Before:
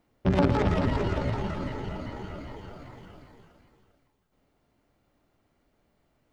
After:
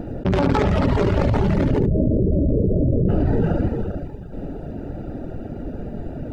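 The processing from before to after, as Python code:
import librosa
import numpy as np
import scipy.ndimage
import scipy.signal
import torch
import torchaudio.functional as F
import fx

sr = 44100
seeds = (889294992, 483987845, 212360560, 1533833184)

y = fx.wiener(x, sr, points=41)
y = fx.steep_lowpass(y, sr, hz=630.0, slope=96, at=(1.78, 3.08), fade=0.02)
y = fx.echo_feedback(y, sr, ms=72, feedback_pct=20, wet_db=-4.5)
y = fx.dereverb_blind(y, sr, rt60_s=0.54)
y = fx.env_flatten(y, sr, amount_pct=100)
y = y * librosa.db_to_amplitude(2.0)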